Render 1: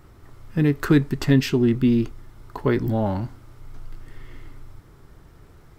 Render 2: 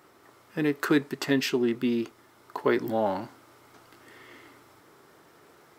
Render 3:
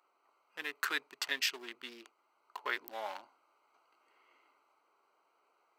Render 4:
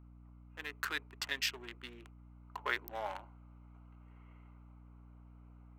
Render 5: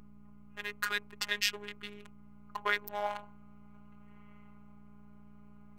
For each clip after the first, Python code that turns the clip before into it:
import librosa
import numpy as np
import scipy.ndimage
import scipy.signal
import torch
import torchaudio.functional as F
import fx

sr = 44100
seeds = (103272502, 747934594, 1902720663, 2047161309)

y1 = scipy.signal.sosfilt(scipy.signal.butter(2, 360.0, 'highpass', fs=sr, output='sos'), x)
y1 = fx.rider(y1, sr, range_db=10, speed_s=2.0)
y2 = fx.wiener(y1, sr, points=25)
y2 = scipy.signal.sosfilt(scipy.signal.butter(2, 1500.0, 'highpass', fs=sr, output='sos'), y2)
y3 = fx.wiener(y2, sr, points=9)
y3 = fx.rider(y3, sr, range_db=4, speed_s=2.0)
y3 = fx.add_hum(y3, sr, base_hz=60, snr_db=11)
y3 = y3 * librosa.db_to_amplitude(-2.5)
y4 = fx.robotise(y3, sr, hz=206.0)
y4 = y4 * librosa.db_to_amplitude(6.5)